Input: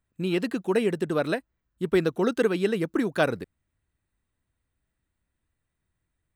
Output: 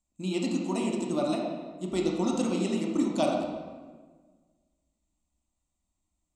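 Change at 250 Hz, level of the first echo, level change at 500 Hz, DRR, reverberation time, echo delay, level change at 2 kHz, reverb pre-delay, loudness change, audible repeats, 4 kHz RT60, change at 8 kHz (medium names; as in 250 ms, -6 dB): -0.5 dB, no echo, -5.5 dB, -1.5 dB, 1.5 s, no echo, -11.0 dB, 15 ms, -3.5 dB, no echo, 1.0 s, +5.5 dB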